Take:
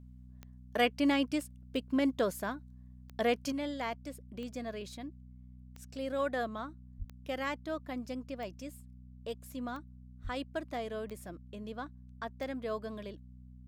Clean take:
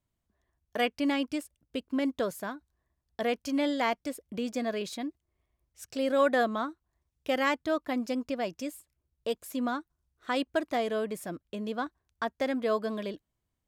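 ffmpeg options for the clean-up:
-filter_complex "[0:a]adeclick=t=4,bandreject=f=62.3:t=h:w=4,bandreject=f=124.6:t=h:w=4,bandreject=f=186.9:t=h:w=4,bandreject=f=249.2:t=h:w=4,asplit=3[s0][s1][s2];[s0]afade=t=out:st=6.98:d=0.02[s3];[s1]highpass=f=140:w=0.5412,highpass=f=140:w=1.3066,afade=t=in:st=6.98:d=0.02,afade=t=out:st=7.1:d=0.02[s4];[s2]afade=t=in:st=7.1:d=0.02[s5];[s3][s4][s5]amix=inputs=3:normalize=0,asplit=3[s6][s7][s8];[s6]afade=t=out:st=10.23:d=0.02[s9];[s7]highpass=f=140:w=0.5412,highpass=f=140:w=1.3066,afade=t=in:st=10.23:d=0.02,afade=t=out:st=10.35:d=0.02[s10];[s8]afade=t=in:st=10.35:d=0.02[s11];[s9][s10][s11]amix=inputs=3:normalize=0,asetnsamples=n=441:p=0,asendcmd='3.52 volume volume 8.5dB',volume=1"

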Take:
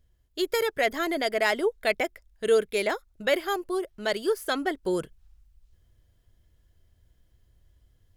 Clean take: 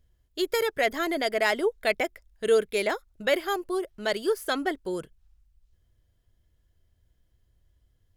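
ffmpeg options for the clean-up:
-af "asetnsamples=n=441:p=0,asendcmd='4.83 volume volume -4.5dB',volume=1"

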